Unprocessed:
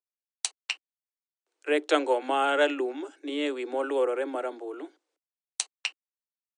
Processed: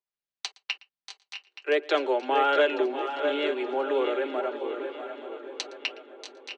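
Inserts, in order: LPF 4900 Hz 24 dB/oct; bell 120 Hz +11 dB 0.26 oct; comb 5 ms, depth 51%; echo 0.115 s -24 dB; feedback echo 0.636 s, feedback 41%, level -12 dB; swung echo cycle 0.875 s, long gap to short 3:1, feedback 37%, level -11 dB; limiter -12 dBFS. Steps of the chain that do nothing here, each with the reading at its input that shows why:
bell 120 Hz: input band starts at 240 Hz

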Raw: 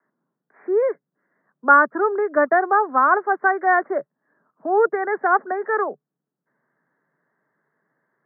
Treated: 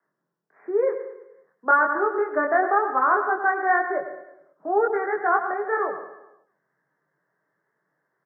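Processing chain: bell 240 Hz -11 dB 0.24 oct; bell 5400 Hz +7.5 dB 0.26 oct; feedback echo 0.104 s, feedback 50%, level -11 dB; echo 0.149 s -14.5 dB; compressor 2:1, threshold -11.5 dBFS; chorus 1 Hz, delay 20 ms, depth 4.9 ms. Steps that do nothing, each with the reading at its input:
bell 5400 Hz: input band ends at 2000 Hz

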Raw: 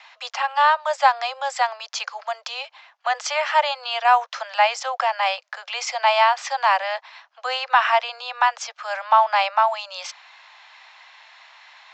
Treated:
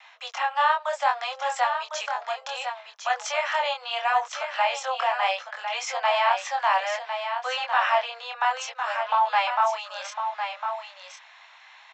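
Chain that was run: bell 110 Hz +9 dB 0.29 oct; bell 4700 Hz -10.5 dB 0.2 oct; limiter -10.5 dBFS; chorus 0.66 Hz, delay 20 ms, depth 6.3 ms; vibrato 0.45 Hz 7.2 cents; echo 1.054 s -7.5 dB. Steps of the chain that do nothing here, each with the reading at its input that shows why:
bell 110 Hz: input band starts at 450 Hz

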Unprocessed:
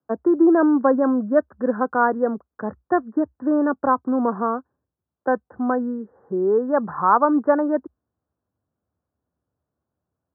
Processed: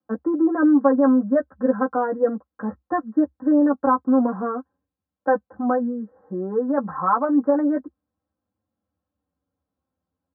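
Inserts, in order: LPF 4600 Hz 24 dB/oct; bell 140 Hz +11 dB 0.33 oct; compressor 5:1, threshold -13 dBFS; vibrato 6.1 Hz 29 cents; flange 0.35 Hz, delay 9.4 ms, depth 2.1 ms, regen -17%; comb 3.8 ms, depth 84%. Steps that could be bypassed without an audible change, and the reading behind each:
LPF 4600 Hz: input band ends at 1800 Hz

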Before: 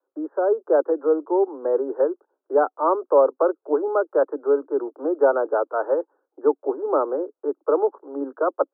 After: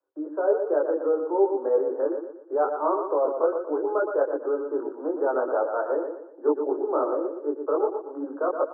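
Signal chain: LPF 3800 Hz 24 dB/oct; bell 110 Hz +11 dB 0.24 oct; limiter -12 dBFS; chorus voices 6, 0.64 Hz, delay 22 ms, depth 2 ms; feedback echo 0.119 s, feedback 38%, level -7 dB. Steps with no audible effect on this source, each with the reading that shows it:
LPF 3800 Hz: input band ends at 1500 Hz; bell 110 Hz: input band starts at 240 Hz

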